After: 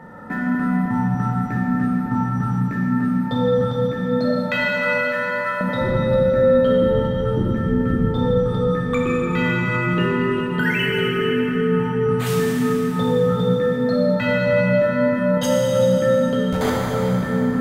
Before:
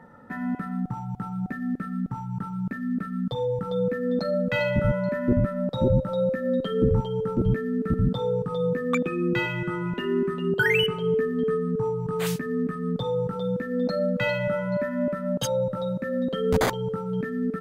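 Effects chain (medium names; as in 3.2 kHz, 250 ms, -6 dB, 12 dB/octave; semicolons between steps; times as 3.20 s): 4.30–5.61 s: high-pass 880 Hz 24 dB/octave; compression, threshold -30 dBFS, peak gain reduction 13.5 dB; plate-style reverb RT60 4.8 s, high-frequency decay 0.65×, DRR -5.5 dB; trim +7.5 dB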